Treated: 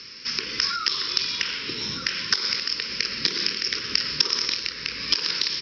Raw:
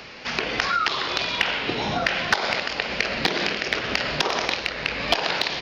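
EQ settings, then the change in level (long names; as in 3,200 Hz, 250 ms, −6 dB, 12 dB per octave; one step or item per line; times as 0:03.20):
high-pass filter 44 Hz
Butterworth band-reject 710 Hz, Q 1.1
low-pass with resonance 5,300 Hz, resonance Q 13
−7.5 dB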